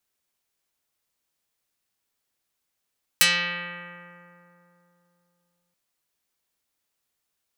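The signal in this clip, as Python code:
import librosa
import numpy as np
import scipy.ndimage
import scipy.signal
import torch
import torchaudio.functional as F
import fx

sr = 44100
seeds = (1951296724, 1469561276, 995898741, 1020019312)

y = fx.pluck(sr, length_s=2.53, note=53, decay_s=3.36, pick=0.49, brightness='dark')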